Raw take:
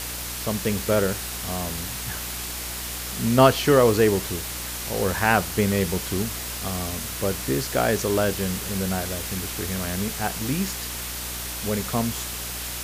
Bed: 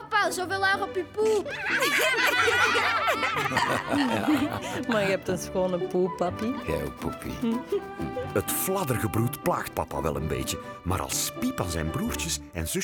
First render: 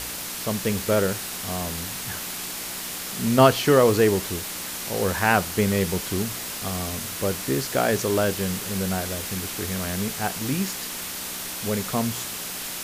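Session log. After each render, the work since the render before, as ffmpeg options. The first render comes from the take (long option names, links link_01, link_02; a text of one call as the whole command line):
ffmpeg -i in.wav -af "bandreject=frequency=60:width_type=h:width=4,bandreject=frequency=120:width_type=h:width=4" out.wav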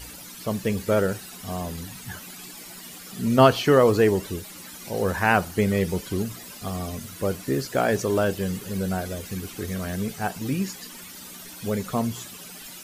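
ffmpeg -i in.wav -af "afftdn=noise_reduction=14:noise_floor=-33" out.wav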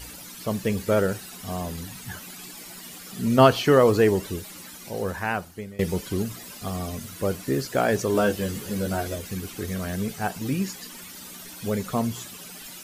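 ffmpeg -i in.wav -filter_complex "[0:a]asettb=1/sr,asplit=3[link_01][link_02][link_03];[link_01]atrim=end=8.134[link_04];[link_02]atrim=start=8.13:end=9.16,asetpts=PTS-STARTPTS,afade=type=in:duration=0.004:curve=qsin,afade=type=out:start_time=1.026:duration=0.004:curve=qsin,asplit=2[link_05][link_06];[link_06]adelay=14,volume=-3dB[link_07];[link_05][link_07]amix=inputs=2:normalize=0,atrim=end_sample=45423[link_08];[link_03]atrim=start=9.156[link_09];[link_04][link_08]acrossfade=duration=0.004:curve1=hsin:curve2=qsin[link_10];[link_10][link_09]acrossfade=duration=0.004:curve1=qsin:curve2=hsin,asplit=2[link_11][link_12];[link_11]atrim=end=5.79,asetpts=PTS-STARTPTS,afade=type=out:start_time=4.55:duration=1.24:silence=0.0707946[link_13];[link_12]atrim=start=5.79,asetpts=PTS-STARTPTS,afade=type=in:duration=0.004:curve=hsin:silence=0.0707946[link_14];[link_13][link_14]concat=n=2:v=0:a=1" out.wav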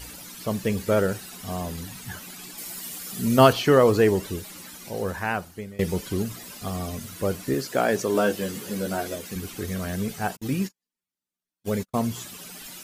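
ffmpeg -i in.wav -filter_complex "[0:a]asettb=1/sr,asplit=3[link_01][link_02][link_03];[link_01]atrim=end=2.584[link_04];[link_02]atrim=start=2.58:end=3.53,asetpts=PTS-STARTPTS,afade=type=in:duration=0.004:curve=qsin,afade=type=out:start_time=0.946:duration=0.004:curve=qsin,highshelf=frequency=6200:gain=8.5[link_05];[link_03]atrim=start=3.526[link_06];[link_04][link_05]acrossfade=duration=0.004:curve1=hsin:curve2=qsin[link_07];[link_07][link_06]acrossfade=duration=0.004:curve1=qsin:curve2=hsin,asettb=1/sr,asplit=3[link_08][link_09][link_10];[link_08]atrim=end=7.544[link_11];[link_09]atrim=start=7.54:end=9.36,asetpts=PTS-STARTPTS,afade=type=in:duration=0.004:curve=qsin,afade=type=out:start_time=1.816:duration=0.004:curve=qsin,highpass=160[link_12];[link_10]atrim=start=9.356[link_13];[link_11][link_12]acrossfade=duration=0.004:curve1=hsin:curve2=qsin[link_14];[link_14][link_13]acrossfade=duration=0.004:curve1=qsin:curve2=hsin,asplit=3[link_15][link_16][link_17];[link_15]afade=type=out:start_time=10.35:duration=0.02[link_18];[link_16]agate=range=-51dB:threshold=-31dB:ratio=16:release=100:detection=peak,afade=type=in:start_time=10.35:duration=0.02,afade=type=out:start_time=11.99:duration=0.02[link_19];[link_17]afade=type=in:start_time=11.99:duration=0.02[link_20];[link_18][link_19][link_20]amix=inputs=3:normalize=0" out.wav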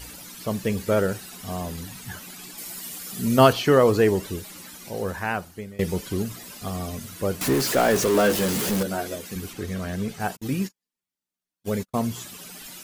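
ffmpeg -i in.wav -filter_complex "[0:a]asettb=1/sr,asplit=3[link_01][link_02][link_03];[link_01]atrim=end=7.414[link_04];[link_02]atrim=start=7.41:end=8.83,asetpts=PTS-STARTPTS,afade=type=in:duration=0.004:curve=qsin,afade=type=out:start_time=1.416:duration=0.004:curve=qsin,aeval=exprs='val(0)+0.5*0.0794*sgn(val(0))':channel_layout=same[link_05];[link_03]atrim=start=8.826[link_06];[link_04][link_05]acrossfade=duration=0.004:curve1=hsin:curve2=qsin[link_07];[link_07][link_06]acrossfade=duration=0.004:curve1=qsin:curve2=hsin,asettb=1/sr,asplit=3[link_08][link_09][link_10];[link_08]atrim=end=9.534[link_11];[link_09]atrim=start=9.53:end=10.2,asetpts=PTS-STARTPTS,afade=type=in:duration=0.004:curve=qsin,afade=type=out:start_time=0.666:duration=0.004:curve=qsin,highshelf=frequency=8000:gain=-9.5[link_12];[link_10]atrim=start=10.196[link_13];[link_11][link_12]acrossfade=duration=0.004:curve1=hsin:curve2=qsin[link_14];[link_14][link_13]acrossfade=duration=0.004:curve1=qsin:curve2=hsin" out.wav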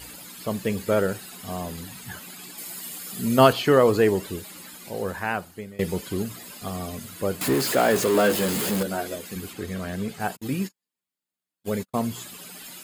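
ffmpeg -i in.wav -af "highpass=frequency=110:poles=1,bandreject=frequency=5800:width=6.4" out.wav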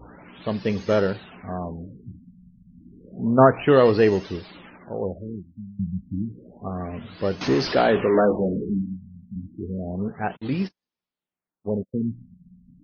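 ffmpeg -i in.wav -filter_complex "[0:a]asplit=2[link_01][link_02];[link_02]acrusher=samples=19:mix=1:aa=0.000001,volume=-11dB[link_03];[link_01][link_03]amix=inputs=2:normalize=0,afftfilt=real='re*lt(b*sr/1024,230*pow(6600/230,0.5+0.5*sin(2*PI*0.3*pts/sr)))':imag='im*lt(b*sr/1024,230*pow(6600/230,0.5+0.5*sin(2*PI*0.3*pts/sr)))':win_size=1024:overlap=0.75" out.wav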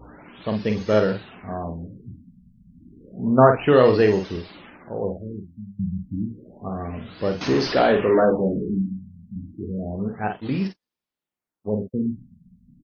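ffmpeg -i in.wav -filter_complex "[0:a]asplit=2[link_01][link_02];[link_02]adelay=47,volume=-6.5dB[link_03];[link_01][link_03]amix=inputs=2:normalize=0" out.wav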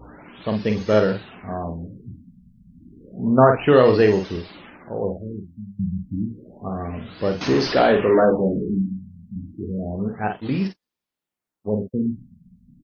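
ffmpeg -i in.wav -af "volume=1.5dB,alimiter=limit=-3dB:level=0:latency=1" out.wav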